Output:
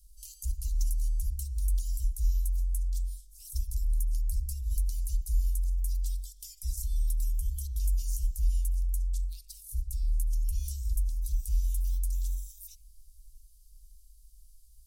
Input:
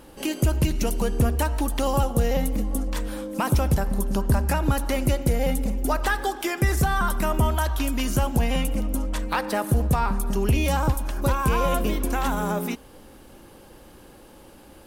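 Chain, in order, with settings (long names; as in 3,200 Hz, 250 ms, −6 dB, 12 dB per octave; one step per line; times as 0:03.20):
inverse Chebyshev band-stop filter 150–1,700 Hz, stop band 60 dB
low-shelf EQ 140 Hz +9.5 dB
bucket-brigade delay 85 ms, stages 1,024, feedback 54%, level −8 dB
level −7.5 dB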